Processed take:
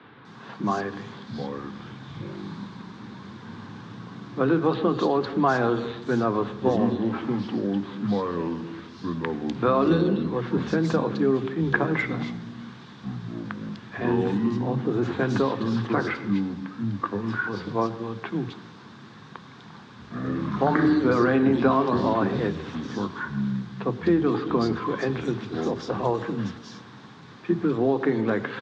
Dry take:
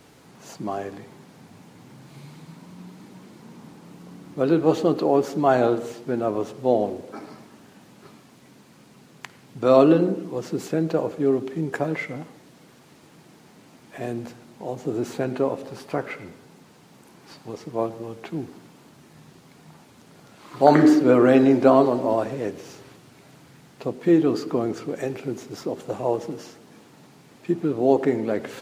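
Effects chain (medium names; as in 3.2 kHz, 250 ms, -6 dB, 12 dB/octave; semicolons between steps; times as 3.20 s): compression 6:1, threshold -19 dBFS, peak gain reduction 11 dB; ever faster or slower copies 431 ms, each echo -6 st, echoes 2, each echo -6 dB; cabinet simulation 100–5500 Hz, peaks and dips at 120 Hz +7 dB, 210 Hz +8 dB, 610 Hz -7 dB, 1.1 kHz +8 dB, 1.6 kHz +8 dB, 3.6 kHz +9 dB; three bands offset in time mids, lows, highs 30/250 ms, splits 190/3200 Hz; trim +2 dB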